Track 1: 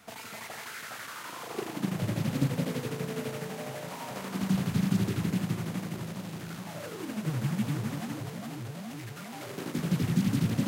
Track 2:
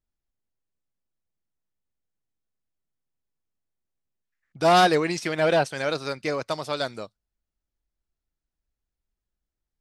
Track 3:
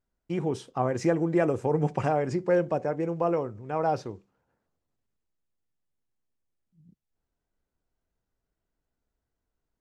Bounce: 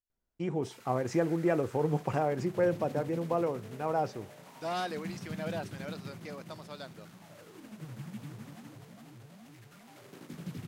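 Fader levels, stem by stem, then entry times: −13.0, −17.0, −4.0 decibels; 0.55, 0.00, 0.10 seconds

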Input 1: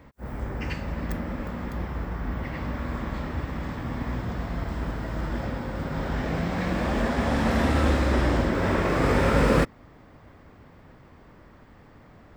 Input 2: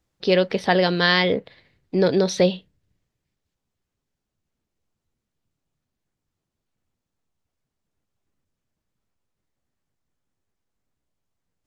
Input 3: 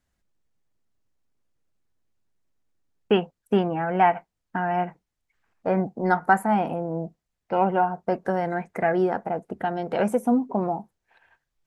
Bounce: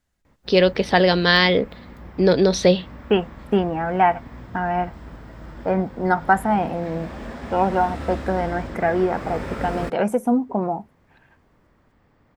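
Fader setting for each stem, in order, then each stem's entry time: −9.0, +2.5, +2.0 decibels; 0.25, 0.25, 0.00 seconds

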